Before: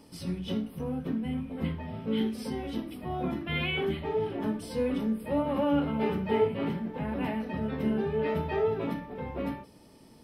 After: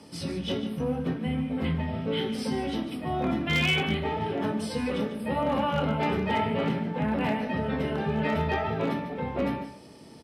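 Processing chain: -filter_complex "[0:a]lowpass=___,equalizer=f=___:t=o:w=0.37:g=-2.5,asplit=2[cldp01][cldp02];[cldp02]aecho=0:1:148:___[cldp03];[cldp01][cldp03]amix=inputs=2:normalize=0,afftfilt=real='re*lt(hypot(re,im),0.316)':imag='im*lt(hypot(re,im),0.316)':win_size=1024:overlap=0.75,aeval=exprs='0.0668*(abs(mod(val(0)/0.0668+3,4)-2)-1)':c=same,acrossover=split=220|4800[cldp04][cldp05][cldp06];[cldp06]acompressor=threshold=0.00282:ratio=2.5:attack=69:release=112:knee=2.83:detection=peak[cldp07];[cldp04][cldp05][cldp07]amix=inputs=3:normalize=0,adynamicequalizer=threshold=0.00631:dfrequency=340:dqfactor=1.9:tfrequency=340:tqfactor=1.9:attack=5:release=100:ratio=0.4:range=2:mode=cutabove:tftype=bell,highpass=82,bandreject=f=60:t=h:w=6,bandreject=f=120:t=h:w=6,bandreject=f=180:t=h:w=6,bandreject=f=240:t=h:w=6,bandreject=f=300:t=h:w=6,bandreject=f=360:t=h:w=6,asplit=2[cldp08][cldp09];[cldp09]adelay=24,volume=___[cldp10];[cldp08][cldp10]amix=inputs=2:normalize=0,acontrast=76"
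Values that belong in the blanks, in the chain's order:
9k, 1k, 0.266, 0.266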